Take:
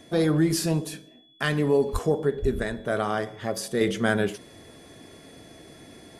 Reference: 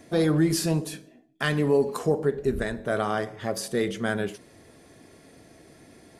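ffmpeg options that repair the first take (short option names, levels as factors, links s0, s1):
-filter_complex "[0:a]bandreject=f=3400:w=30,asplit=3[s0][s1][s2];[s0]afade=t=out:st=1.92:d=0.02[s3];[s1]highpass=f=140:w=0.5412,highpass=f=140:w=1.3066,afade=t=in:st=1.92:d=0.02,afade=t=out:st=2.04:d=0.02[s4];[s2]afade=t=in:st=2.04:d=0.02[s5];[s3][s4][s5]amix=inputs=3:normalize=0,asplit=3[s6][s7][s8];[s6]afade=t=out:st=2.41:d=0.02[s9];[s7]highpass=f=140:w=0.5412,highpass=f=140:w=1.3066,afade=t=in:st=2.41:d=0.02,afade=t=out:st=2.53:d=0.02[s10];[s8]afade=t=in:st=2.53:d=0.02[s11];[s9][s10][s11]amix=inputs=3:normalize=0,asetnsamples=n=441:p=0,asendcmd='3.81 volume volume -4dB',volume=1"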